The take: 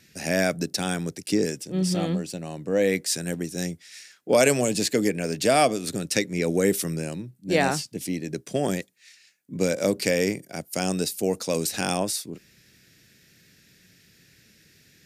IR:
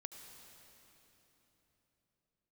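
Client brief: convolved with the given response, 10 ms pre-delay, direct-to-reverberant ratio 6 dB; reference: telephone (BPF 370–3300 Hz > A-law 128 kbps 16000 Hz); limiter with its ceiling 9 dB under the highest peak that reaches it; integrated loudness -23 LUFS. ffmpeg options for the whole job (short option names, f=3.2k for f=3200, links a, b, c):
-filter_complex "[0:a]alimiter=limit=-12.5dB:level=0:latency=1,asplit=2[a][b];[1:a]atrim=start_sample=2205,adelay=10[c];[b][c]afir=irnorm=-1:irlink=0,volume=-1.5dB[d];[a][d]amix=inputs=2:normalize=0,highpass=370,lowpass=3.3k,volume=6dB" -ar 16000 -c:a pcm_alaw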